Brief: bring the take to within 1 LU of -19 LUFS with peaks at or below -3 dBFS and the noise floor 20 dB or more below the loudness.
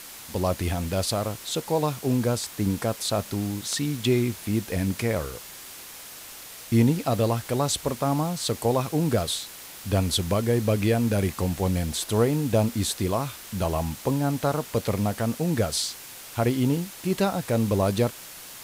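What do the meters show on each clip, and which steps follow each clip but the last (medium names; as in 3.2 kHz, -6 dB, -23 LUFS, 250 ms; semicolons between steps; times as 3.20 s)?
noise floor -42 dBFS; noise floor target -46 dBFS; loudness -25.5 LUFS; peak level -8.5 dBFS; loudness target -19.0 LUFS
-> noise reduction 6 dB, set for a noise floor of -42 dBFS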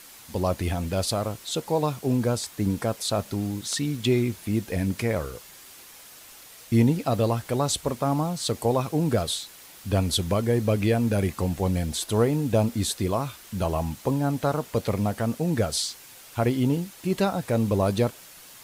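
noise floor -48 dBFS; loudness -26.0 LUFS; peak level -9.0 dBFS; loudness target -19.0 LUFS
-> trim +7 dB; peak limiter -3 dBFS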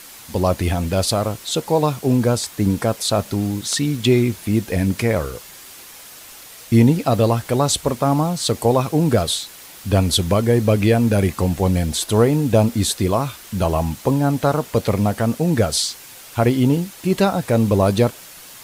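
loudness -19.0 LUFS; peak level -3.0 dBFS; noise floor -41 dBFS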